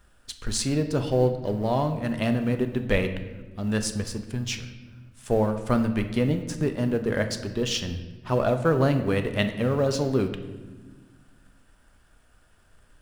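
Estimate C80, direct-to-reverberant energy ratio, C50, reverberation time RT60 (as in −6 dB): 12.0 dB, 7.0 dB, 10.0 dB, 1.4 s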